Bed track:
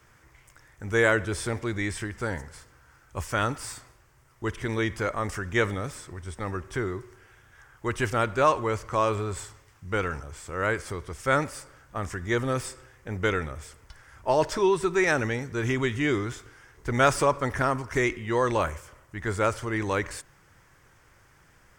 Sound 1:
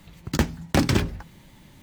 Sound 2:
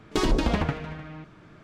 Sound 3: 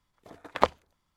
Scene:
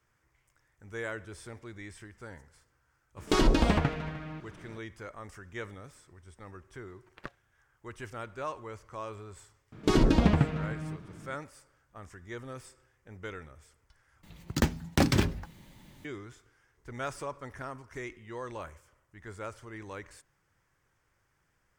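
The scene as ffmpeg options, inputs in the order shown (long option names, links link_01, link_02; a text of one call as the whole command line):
ffmpeg -i bed.wav -i cue0.wav -i cue1.wav -i cue2.wav -filter_complex "[2:a]asplit=2[link_01][link_02];[0:a]volume=-15.5dB[link_03];[3:a]aeval=exprs='val(0)*sin(2*PI*630*n/s)':channel_layout=same[link_04];[link_02]equalizer=frequency=150:width=0.5:gain=8[link_05];[link_03]asplit=2[link_06][link_07];[link_06]atrim=end=14.234[link_08];[1:a]atrim=end=1.82,asetpts=PTS-STARTPTS,volume=-4dB[link_09];[link_07]atrim=start=16.046[link_10];[link_01]atrim=end=1.63,asetpts=PTS-STARTPTS,volume=-0.5dB,afade=type=in:duration=0.02,afade=type=out:start_time=1.61:duration=0.02,adelay=3160[link_11];[link_04]atrim=end=1.16,asetpts=PTS-STARTPTS,volume=-17dB,afade=type=in:duration=0.004:curve=hsin,afade=type=out:start_time=1.156:duration=0.004:curve=hsin,adelay=6620[link_12];[link_05]atrim=end=1.63,asetpts=PTS-STARTPTS,volume=-3.5dB,afade=type=in:duration=0.004:curve=hsin,afade=type=out:start_time=1.626:duration=0.004:curve=hsin,adelay=9720[link_13];[link_08][link_09]acrossfade=duration=0.004:curve1=hsin:curve2=hsin[link_14];[link_14][link_10]acrossfade=duration=0.004:curve1=hsin:curve2=hsin[link_15];[link_15][link_11][link_12][link_13]amix=inputs=4:normalize=0" out.wav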